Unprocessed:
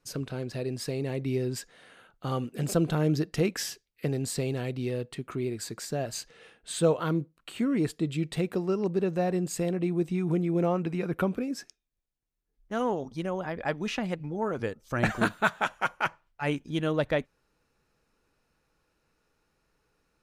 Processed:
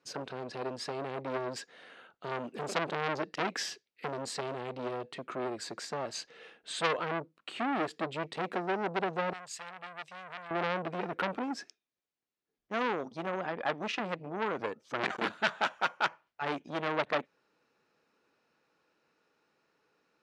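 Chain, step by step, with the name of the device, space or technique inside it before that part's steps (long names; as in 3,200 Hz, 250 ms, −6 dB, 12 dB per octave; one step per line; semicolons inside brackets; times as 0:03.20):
public-address speaker with an overloaded transformer (saturating transformer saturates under 3,400 Hz; band-pass filter 240–5,000 Hz)
0:09.33–0:10.51: guitar amp tone stack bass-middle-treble 10-0-10
level +1.5 dB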